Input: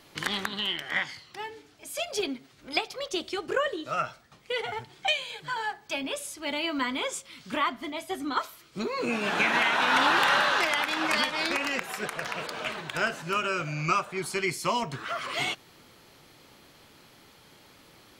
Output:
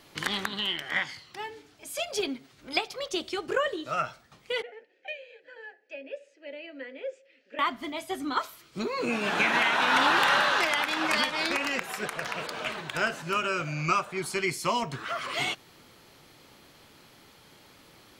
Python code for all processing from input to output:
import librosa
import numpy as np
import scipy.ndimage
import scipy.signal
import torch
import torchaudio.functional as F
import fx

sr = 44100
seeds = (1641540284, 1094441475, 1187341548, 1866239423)

y = fx.chain(x, sr, fx.vowel_filter(vowel='e'),
    fx.cabinet(low_hz=230.0, low_slope=24, high_hz=7700.0, hz=(270.0, 470.0, 3500.0), db=(7, 3, -7)), at=(4.62, 7.59))